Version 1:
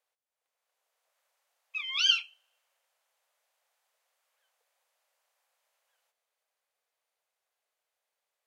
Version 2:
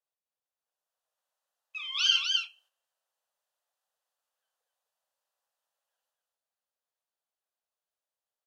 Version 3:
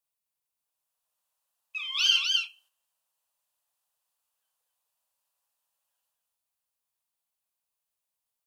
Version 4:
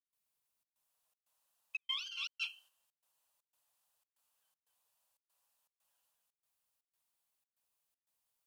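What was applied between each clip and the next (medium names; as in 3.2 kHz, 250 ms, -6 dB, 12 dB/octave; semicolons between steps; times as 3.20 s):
gate -58 dBFS, range -11 dB; peaking EQ 2.2 kHz -12.5 dB 0.27 oct; on a send: loudspeakers at several distances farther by 19 m -5 dB, 87 m -3 dB
tone controls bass +11 dB, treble +15 dB; in parallel at -12 dB: hard clipper -22.5 dBFS, distortion -7 dB; on the sum: fifteen-band graphic EQ 1 kHz +8 dB, 2.5 kHz +7 dB, 6.3 kHz -4 dB; trim -7.5 dB
compressor with a negative ratio -35 dBFS, ratio -1; trance gate ".xxxx.xxx" 119 bpm -60 dB; trim -5.5 dB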